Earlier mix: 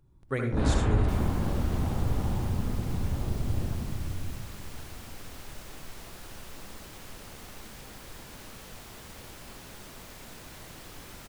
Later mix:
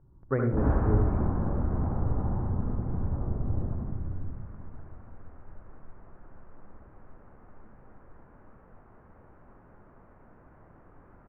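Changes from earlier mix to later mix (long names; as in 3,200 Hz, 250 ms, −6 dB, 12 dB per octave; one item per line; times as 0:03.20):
speech +3.5 dB
second sound −7.0 dB
master: add inverse Chebyshev low-pass filter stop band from 3,700 Hz, stop band 50 dB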